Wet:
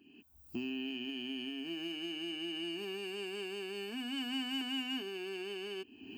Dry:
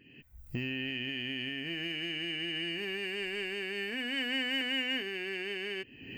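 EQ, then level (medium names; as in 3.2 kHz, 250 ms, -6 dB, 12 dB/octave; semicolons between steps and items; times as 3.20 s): high-pass 120 Hz 12 dB/octave; static phaser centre 520 Hz, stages 6; +1.0 dB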